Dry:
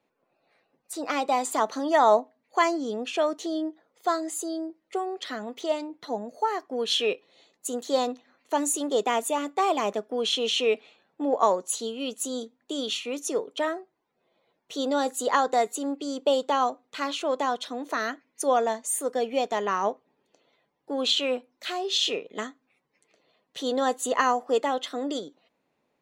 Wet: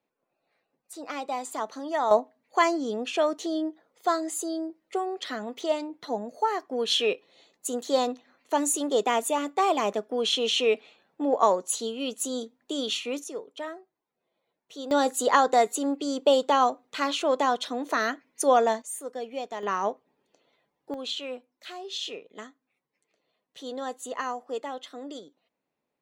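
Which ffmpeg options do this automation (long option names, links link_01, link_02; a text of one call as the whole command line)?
ffmpeg -i in.wav -af "asetnsamples=nb_out_samples=441:pad=0,asendcmd='2.11 volume volume 0.5dB;13.24 volume volume -8.5dB;14.91 volume volume 2.5dB;18.82 volume volume -8dB;19.63 volume volume -1.5dB;20.94 volume volume -9dB',volume=-7dB" out.wav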